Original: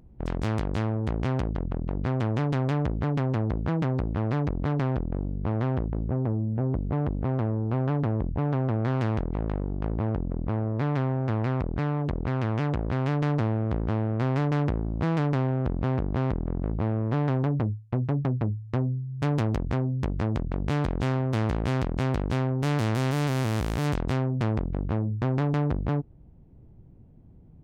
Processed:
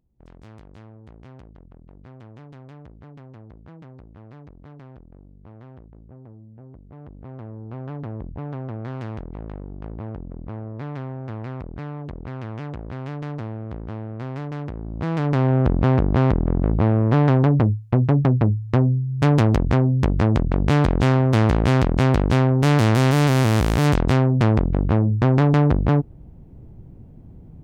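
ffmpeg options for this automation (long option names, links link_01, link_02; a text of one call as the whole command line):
ffmpeg -i in.wav -af "volume=9dB,afade=type=in:start_time=6.88:duration=1.29:silence=0.251189,afade=type=in:start_time=14.73:duration=0.49:silence=0.398107,afade=type=in:start_time=15.22:duration=0.34:silence=0.473151" out.wav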